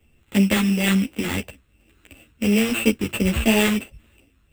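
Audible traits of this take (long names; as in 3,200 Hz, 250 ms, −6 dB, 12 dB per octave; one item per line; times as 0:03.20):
a buzz of ramps at a fixed pitch in blocks of 16 samples
phaser sweep stages 4, 2.9 Hz, lowest notch 630–1,400 Hz
aliases and images of a low sample rate 5,400 Hz, jitter 0%
a shimmering, thickened sound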